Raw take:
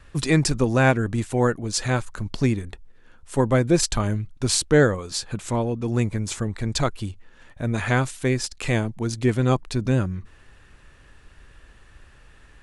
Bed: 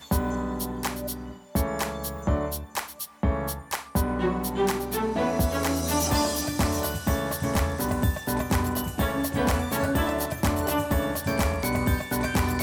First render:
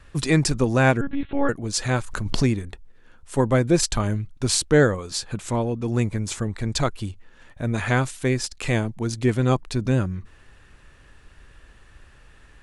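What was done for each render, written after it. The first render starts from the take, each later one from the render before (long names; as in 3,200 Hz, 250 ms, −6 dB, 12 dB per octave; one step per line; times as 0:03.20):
0:01.01–0:01.49: one-pitch LPC vocoder at 8 kHz 280 Hz
0:02.01–0:02.63: background raised ahead of every attack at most 47 dB per second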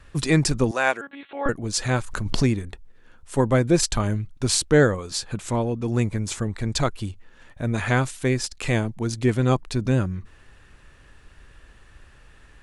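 0:00.71–0:01.46: high-pass filter 630 Hz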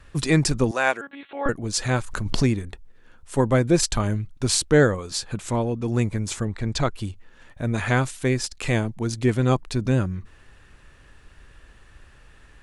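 0:06.45–0:06.95: high-frequency loss of the air 56 metres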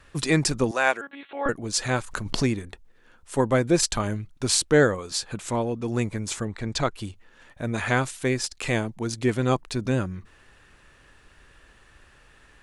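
low-shelf EQ 170 Hz −8 dB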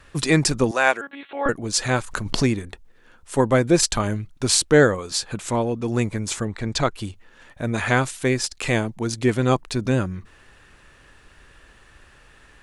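level +3.5 dB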